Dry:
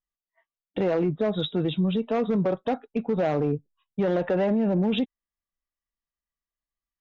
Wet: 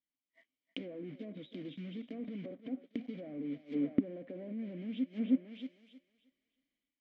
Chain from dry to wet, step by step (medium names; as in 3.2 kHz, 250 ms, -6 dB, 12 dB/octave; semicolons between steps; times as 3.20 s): block-companded coder 3-bit; peak limiter -25 dBFS, peak gain reduction 10 dB; level rider gain up to 12 dB; high-order bell 720 Hz +11.5 dB 1.2 oct; thinning echo 314 ms, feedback 26%, high-pass 260 Hz, level -15 dB; inverted gate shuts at -18 dBFS, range -24 dB; low-pass that closes with the level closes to 1.3 kHz, closed at -32.5 dBFS; vowel filter i; bass shelf 450 Hz +5 dB; trim +9.5 dB